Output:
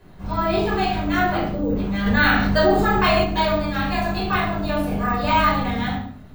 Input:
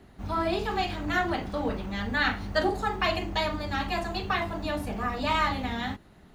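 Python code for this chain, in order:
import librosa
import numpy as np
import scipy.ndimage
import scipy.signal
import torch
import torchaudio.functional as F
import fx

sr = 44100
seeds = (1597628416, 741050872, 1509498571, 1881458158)

p1 = fx.spec_box(x, sr, start_s=1.49, length_s=0.27, low_hz=600.0, high_hz=11000.0, gain_db=-15)
p2 = p1 + fx.echo_single(p1, sr, ms=110, db=-15.5, dry=0)
p3 = fx.room_shoebox(p2, sr, seeds[0], volume_m3=720.0, walls='furnished', distance_m=5.2)
p4 = np.repeat(p3[::2], 2)[:len(p3)]
p5 = fx.env_flatten(p4, sr, amount_pct=50, at=(2.06, 3.24))
y = F.gain(torch.from_numpy(p5), -1.5).numpy()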